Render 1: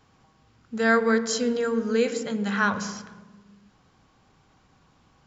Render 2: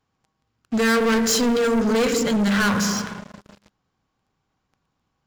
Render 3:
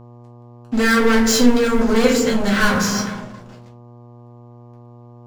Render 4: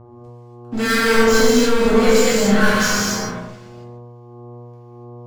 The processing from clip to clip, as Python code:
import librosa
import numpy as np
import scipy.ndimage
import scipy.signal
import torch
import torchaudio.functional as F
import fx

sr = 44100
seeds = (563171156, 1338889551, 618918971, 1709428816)

y1 = fx.dynamic_eq(x, sr, hz=770.0, q=1.1, threshold_db=-39.0, ratio=4.0, max_db=-7)
y1 = fx.leveller(y1, sr, passes=5)
y1 = y1 * 10.0 ** (-4.0 / 20.0)
y2 = fx.room_shoebox(y1, sr, seeds[0], volume_m3=140.0, walls='furnished', distance_m=2.1)
y2 = fx.dmg_buzz(y2, sr, base_hz=120.0, harmonics=10, level_db=-41.0, tilt_db=-6, odd_only=False)
y2 = y2 * 10.0 ** (-1.0 / 20.0)
y3 = fx.harmonic_tremolo(y2, sr, hz=1.6, depth_pct=70, crossover_hz=1700.0)
y3 = fx.rev_gated(y3, sr, seeds[1], gate_ms=310, shape='flat', drr_db=-5.0)
y3 = y3 * 10.0 ** (-1.0 / 20.0)